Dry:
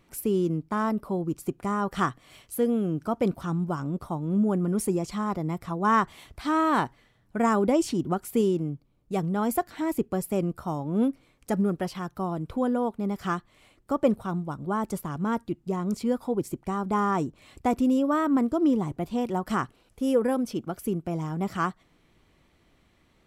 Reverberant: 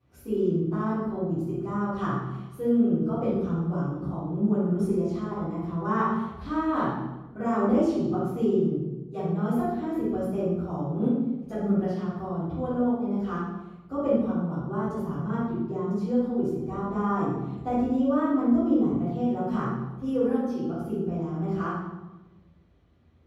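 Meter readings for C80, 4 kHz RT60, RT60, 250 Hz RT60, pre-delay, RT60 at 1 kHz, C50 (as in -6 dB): 1.5 dB, 0.80 s, 1.1 s, 1.4 s, 3 ms, 1.0 s, -2.5 dB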